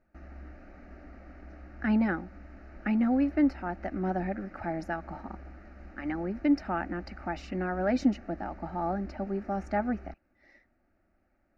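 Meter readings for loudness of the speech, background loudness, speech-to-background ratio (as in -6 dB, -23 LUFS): -31.0 LUFS, -49.0 LUFS, 18.0 dB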